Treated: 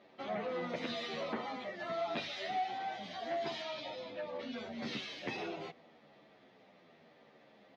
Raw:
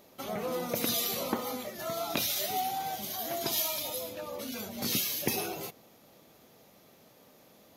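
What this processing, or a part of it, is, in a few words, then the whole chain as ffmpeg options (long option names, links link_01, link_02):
barber-pole flanger into a guitar amplifier: -filter_complex "[0:a]asplit=2[link_01][link_02];[link_02]adelay=10.3,afreqshift=-0.83[link_03];[link_01][link_03]amix=inputs=2:normalize=1,asoftclip=type=tanh:threshold=-31.5dB,highpass=110,equalizer=frequency=110:width_type=q:width=4:gain=-6,equalizer=frequency=710:width_type=q:width=4:gain=3,equalizer=frequency=1900:width_type=q:width=4:gain=7,lowpass=frequency=3900:width=0.5412,lowpass=frequency=3900:width=1.3066,asettb=1/sr,asplit=3[link_04][link_05][link_06];[link_04]atrim=end=3.624[link_07];[link_05]atrim=start=3.62:end=4.58,asetpts=PTS-STARTPTS,afade=type=in:duration=0.004:curve=qsin,afade=type=out:start_time=0.956:duration=0.004:curve=qsin,lowpass=frequency=6200:width=0.5412,lowpass=frequency=6200:width=1.3066[link_08];[link_06]atrim=start=4.576[link_09];[link_07][link_08]acrossfade=duration=0.004:curve1=hsin:curve2=qsin[link_10];[link_10][link_09]acrossfade=duration=0.004:curve1=qsin:curve2=hsin"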